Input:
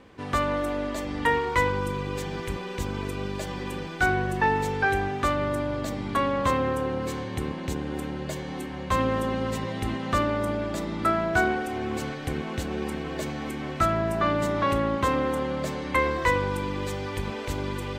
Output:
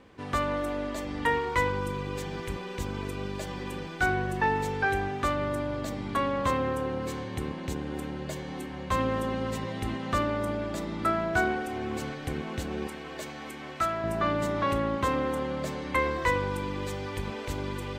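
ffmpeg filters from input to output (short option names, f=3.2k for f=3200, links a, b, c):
-filter_complex "[0:a]asettb=1/sr,asplit=3[a][b][c];[a]atrim=end=12.874[d];[b]atrim=start=12.87:end=14.04,asetpts=PTS-STARTPTS,afade=t=in:d=0.004:c=qsin,afade=t=out:st=1.166:d=0.004:c=qsin,lowshelf=f=360:g=-11[e];[c]atrim=start=14.036[f];[d][e]acrossfade=d=0.004:c1=hsin:c2=qsin[g];[g][f]acrossfade=d=0.004:c1=qsin:c2=hsin,volume=-3dB"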